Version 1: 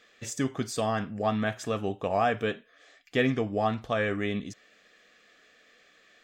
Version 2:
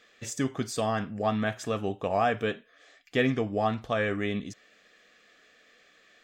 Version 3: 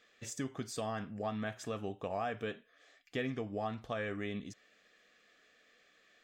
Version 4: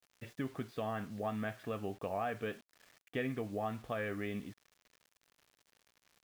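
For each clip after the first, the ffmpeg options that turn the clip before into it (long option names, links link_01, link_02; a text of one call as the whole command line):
ffmpeg -i in.wav -af anull out.wav
ffmpeg -i in.wav -af "acompressor=threshold=-29dB:ratio=2,volume=-7dB" out.wav
ffmpeg -i in.wav -af "lowpass=frequency=3100:width=0.5412,lowpass=frequency=3100:width=1.3066,acrusher=bits=9:mix=0:aa=0.000001" out.wav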